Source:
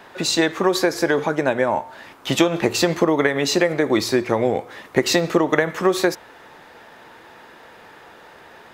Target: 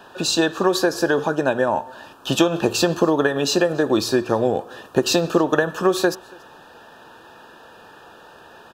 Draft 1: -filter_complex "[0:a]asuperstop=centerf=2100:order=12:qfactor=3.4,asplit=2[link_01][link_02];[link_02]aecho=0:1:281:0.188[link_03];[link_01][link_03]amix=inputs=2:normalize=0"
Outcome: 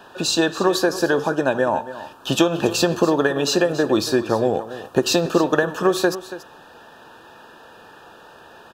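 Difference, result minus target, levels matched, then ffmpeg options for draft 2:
echo-to-direct +12 dB
-filter_complex "[0:a]asuperstop=centerf=2100:order=12:qfactor=3.4,asplit=2[link_01][link_02];[link_02]aecho=0:1:281:0.0473[link_03];[link_01][link_03]amix=inputs=2:normalize=0"

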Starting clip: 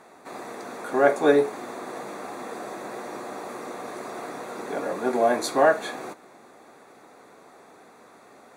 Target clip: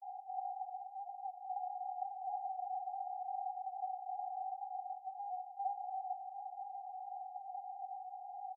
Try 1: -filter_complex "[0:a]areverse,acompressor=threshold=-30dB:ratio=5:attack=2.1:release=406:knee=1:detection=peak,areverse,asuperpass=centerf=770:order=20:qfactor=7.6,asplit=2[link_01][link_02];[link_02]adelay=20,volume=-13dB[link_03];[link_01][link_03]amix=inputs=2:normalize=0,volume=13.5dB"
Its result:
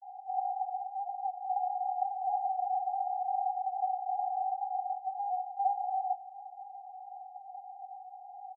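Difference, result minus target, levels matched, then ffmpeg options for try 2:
downward compressor: peak gain reduction −9 dB
-filter_complex "[0:a]areverse,acompressor=threshold=-41.5dB:ratio=5:attack=2.1:release=406:knee=1:detection=peak,areverse,asuperpass=centerf=770:order=20:qfactor=7.6,asplit=2[link_01][link_02];[link_02]adelay=20,volume=-13dB[link_03];[link_01][link_03]amix=inputs=2:normalize=0,volume=13.5dB"

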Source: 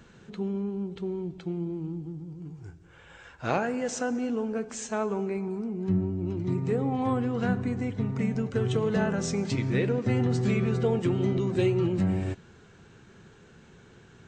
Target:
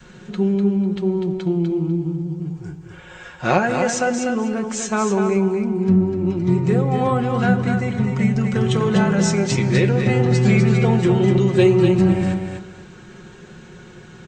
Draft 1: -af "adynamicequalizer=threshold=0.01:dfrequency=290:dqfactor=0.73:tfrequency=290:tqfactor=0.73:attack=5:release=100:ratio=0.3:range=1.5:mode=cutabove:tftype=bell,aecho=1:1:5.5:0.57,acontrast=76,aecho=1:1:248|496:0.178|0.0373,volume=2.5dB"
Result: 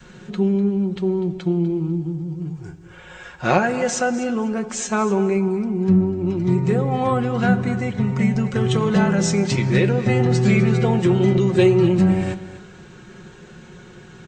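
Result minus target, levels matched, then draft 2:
echo-to-direct −9 dB
-af "adynamicequalizer=threshold=0.01:dfrequency=290:dqfactor=0.73:tfrequency=290:tqfactor=0.73:attack=5:release=100:ratio=0.3:range=1.5:mode=cutabove:tftype=bell,aecho=1:1:5.5:0.57,acontrast=76,aecho=1:1:248|496|744:0.501|0.105|0.0221,volume=2.5dB"

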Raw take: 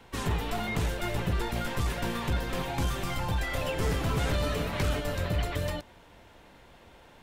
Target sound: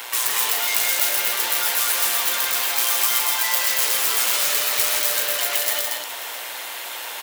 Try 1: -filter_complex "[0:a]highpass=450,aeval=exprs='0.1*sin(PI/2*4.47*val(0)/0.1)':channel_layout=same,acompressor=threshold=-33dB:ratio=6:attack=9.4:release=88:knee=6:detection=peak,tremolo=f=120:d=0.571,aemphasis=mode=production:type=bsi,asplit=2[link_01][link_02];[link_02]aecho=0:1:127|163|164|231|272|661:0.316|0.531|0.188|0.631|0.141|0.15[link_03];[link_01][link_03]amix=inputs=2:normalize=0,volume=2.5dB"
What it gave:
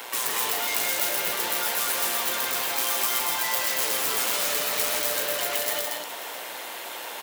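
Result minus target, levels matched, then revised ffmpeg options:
500 Hz band +7.0 dB
-filter_complex "[0:a]highpass=450,aeval=exprs='0.1*sin(PI/2*4.47*val(0)/0.1)':channel_layout=same,acompressor=threshold=-33dB:ratio=6:attack=9.4:release=88:knee=6:detection=peak,tiltshelf=frequency=680:gain=-6,tremolo=f=120:d=0.571,aemphasis=mode=production:type=bsi,asplit=2[link_01][link_02];[link_02]aecho=0:1:127|163|164|231|272|661:0.316|0.531|0.188|0.631|0.141|0.15[link_03];[link_01][link_03]amix=inputs=2:normalize=0,volume=2.5dB"

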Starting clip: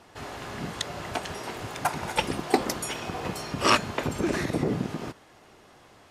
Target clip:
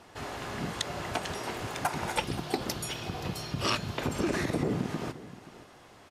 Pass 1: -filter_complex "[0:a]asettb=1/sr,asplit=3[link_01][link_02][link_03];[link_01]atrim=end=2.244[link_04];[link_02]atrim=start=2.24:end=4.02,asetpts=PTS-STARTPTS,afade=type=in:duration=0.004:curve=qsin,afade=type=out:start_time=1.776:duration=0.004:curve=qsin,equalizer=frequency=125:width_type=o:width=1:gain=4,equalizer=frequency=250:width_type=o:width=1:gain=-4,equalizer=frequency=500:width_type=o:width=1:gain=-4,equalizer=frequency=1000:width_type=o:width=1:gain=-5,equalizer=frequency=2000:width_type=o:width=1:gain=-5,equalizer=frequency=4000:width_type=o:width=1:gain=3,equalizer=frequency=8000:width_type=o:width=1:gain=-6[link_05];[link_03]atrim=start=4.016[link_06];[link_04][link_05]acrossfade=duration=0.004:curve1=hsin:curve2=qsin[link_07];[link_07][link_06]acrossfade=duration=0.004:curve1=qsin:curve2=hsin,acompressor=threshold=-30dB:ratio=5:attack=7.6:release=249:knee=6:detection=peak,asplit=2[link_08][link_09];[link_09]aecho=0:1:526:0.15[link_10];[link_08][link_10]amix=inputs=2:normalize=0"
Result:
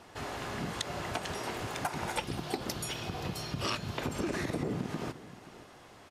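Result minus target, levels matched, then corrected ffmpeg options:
downward compressor: peak gain reduction +5 dB
-filter_complex "[0:a]asettb=1/sr,asplit=3[link_01][link_02][link_03];[link_01]atrim=end=2.244[link_04];[link_02]atrim=start=2.24:end=4.02,asetpts=PTS-STARTPTS,afade=type=in:duration=0.004:curve=qsin,afade=type=out:start_time=1.776:duration=0.004:curve=qsin,equalizer=frequency=125:width_type=o:width=1:gain=4,equalizer=frequency=250:width_type=o:width=1:gain=-4,equalizer=frequency=500:width_type=o:width=1:gain=-4,equalizer=frequency=1000:width_type=o:width=1:gain=-5,equalizer=frequency=2000:width_type=o:width=1:gain=-5,equalizer=frequency=4000:width_type=o:width=1:gain=3,equalizer=frequency=8000:width_type=o:width=1:gain=-6[link_05];[link_03]atrim=start=4.016[link_06];[link_04][link_05]acrossfade=duration=0.004:curve1=hsin:curve2=qsin[link_07];[link_07][link_06]acrossfade=duration=0.004:curve1=qsin:curve2=hsin,acompressor=threshold=-23.5dB:ratio=5:attack=7.6:release=249:knee=6:detection=peak,asplit=2[link_08][link_09];[link_09]aecho=0:1:526:0.15[link_10];[link_08][link_10]amix=inputs=2:normalize=0"

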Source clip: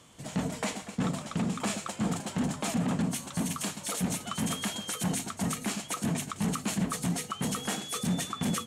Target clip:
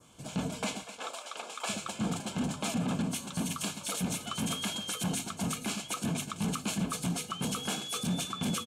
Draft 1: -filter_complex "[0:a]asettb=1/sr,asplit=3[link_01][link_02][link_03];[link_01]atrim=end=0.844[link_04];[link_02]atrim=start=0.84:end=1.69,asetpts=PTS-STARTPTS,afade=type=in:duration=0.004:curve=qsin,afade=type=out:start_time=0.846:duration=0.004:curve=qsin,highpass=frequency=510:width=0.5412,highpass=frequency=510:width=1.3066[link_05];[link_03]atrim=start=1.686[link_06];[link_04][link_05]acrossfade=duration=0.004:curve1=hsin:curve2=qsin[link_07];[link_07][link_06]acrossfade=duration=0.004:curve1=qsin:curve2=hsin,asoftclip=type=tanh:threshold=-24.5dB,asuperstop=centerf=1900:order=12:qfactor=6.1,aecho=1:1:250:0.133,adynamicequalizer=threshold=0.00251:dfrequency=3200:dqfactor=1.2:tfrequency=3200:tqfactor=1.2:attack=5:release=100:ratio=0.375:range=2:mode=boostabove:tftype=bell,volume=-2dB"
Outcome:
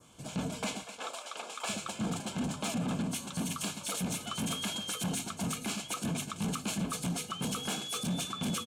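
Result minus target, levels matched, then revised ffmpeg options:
soft clipping: distortion +12 dB
-filter_complex "[0:a]asettb=1/sr,asplit=3[link_01][link_02][link_03];[link_01]atrim=end=0.844[link_04];[link_02]atrim=start=0.84:end=1.69,asetpts=PTS-STARTPTS,afade=type=in:duration=0.004:curve=qsin,afade=type=out:start_time=0.846:duration=0.004:curve=qsin,highpass=frequency=510:width=0.5412,highpass=frequency=510:width=1.3066[link_05];[link_03]atrim=start=1.686[link_06];[link_04][link_05]acrossfade=duration=0.004:curve1=hsin:curve2=qsin[link_07];[link_07][link_06]acrossfade=duration=0.004:curve1=qsin:curve2=hsin,asoftclip=type=tanh:threshold=-17dB,asuperstop=centerf=1900:order=12:qfactor=6.1,aecho=1:1:250:0.133,adynamicequalizer=threshold=0.00251:dfrequency=3200:dqfactor=1.2:tfrequency=3200:tqfactor=1.2:attack=5:release=100:ratio=0.375:range=2:mode=boostabove:tftype=bell,volume=-2dB"

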